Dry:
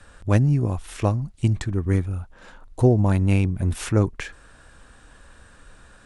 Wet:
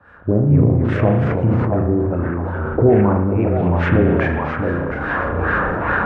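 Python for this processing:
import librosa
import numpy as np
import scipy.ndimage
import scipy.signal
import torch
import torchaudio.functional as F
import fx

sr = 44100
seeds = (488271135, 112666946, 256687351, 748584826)

y = fx.recorder_agc(x, sr, target_db=-8.5, rise_db_per_s=26.0, max_gain_db=30)
y = fx.env_lowpass_down(y, sr, base_hz=1900.0, full_db=-12.0)
y = scipy.signal.sosfilt(scipy.signal.butter(2, 93.0, 'highpass', fs=sr, output='sos'), y)
y = fx.filter_lfo_lowpass(y, sr, shape='sine', hz=2.4, low_hz=420.0, high_hz=1800.0, q=2.1)
y = fx.echo_stepped(y, sr, ms=669, hz=720.0, octaves=0.7, feedback_pct=70, wet_db=-1)
y = fx.echo_pitch(y, sr, ms=193, semitones=-2, count=2, db_per_echo=-6.0)
y = fx.rev_spring(y, sr, rt60_s=1.0, pass_ms=(34,), chirp_ms=75, drr_db=4.0)
y = fx.sustainer(y, sr, db_per_s=21.0)
y = y * 10.0 ** (-1.0 / 20.0)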